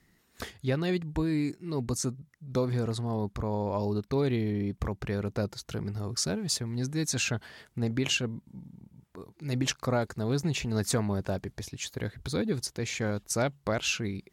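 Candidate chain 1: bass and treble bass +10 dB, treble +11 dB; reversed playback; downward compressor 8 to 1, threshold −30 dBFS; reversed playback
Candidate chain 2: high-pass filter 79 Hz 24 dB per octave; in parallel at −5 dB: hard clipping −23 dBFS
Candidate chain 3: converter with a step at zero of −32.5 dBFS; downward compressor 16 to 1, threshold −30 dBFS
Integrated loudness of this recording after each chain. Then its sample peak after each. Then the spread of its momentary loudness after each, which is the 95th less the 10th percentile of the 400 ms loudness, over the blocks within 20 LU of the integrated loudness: −34.5, −27.5, −34.5 LKFS; −18.5, −12.5, −19.5 dBFS; 6, 9, 3 LU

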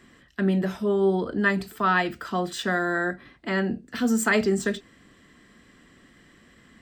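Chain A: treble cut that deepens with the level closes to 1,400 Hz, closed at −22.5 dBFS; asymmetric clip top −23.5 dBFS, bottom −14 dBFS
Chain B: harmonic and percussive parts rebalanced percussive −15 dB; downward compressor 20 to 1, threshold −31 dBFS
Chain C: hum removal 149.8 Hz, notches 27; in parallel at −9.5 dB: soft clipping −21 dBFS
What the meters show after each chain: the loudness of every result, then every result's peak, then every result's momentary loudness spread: −27.5, −37.0, −23.5 LKFS; −14.0, −23.0, −9.5 dBFS; 7, 5, 7 LU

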